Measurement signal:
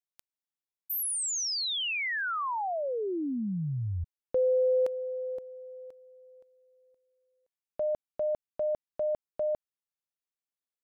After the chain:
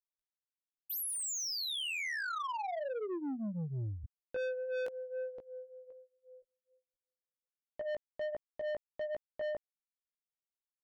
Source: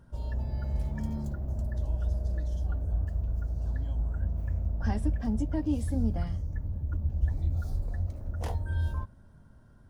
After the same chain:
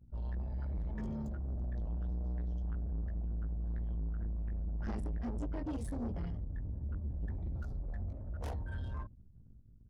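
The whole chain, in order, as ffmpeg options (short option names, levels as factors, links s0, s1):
-af "flanger=delay=16.5:depth=2.4:speed=1.3,asoftclip=type=tanh:threshold=0.0178,anlmdn=0.000631,volume=1.12"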